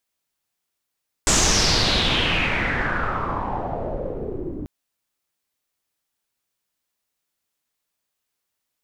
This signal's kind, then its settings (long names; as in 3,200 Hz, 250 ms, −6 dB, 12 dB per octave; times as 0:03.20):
filter sweep on noise pink, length 3.39 s lowpass, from 7,600 Hz, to 300 Hz, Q 4.4, exponential, gain ramp −12.5 dB